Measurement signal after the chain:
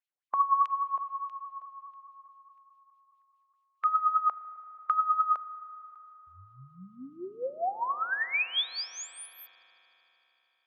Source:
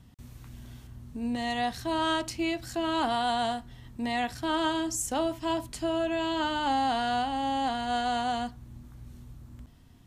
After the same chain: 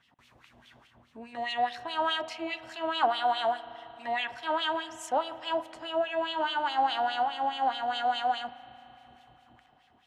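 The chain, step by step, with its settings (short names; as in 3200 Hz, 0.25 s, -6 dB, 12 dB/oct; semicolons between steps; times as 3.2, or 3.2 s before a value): LFO band-pass sine 4.8 Hz 620–3100 Hz; spring tank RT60 4 s, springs 37 ms, chirp 40 ms, DRR 14.5 dB; harmonic-percussive split percussive +3 dB; gain +5.5 dB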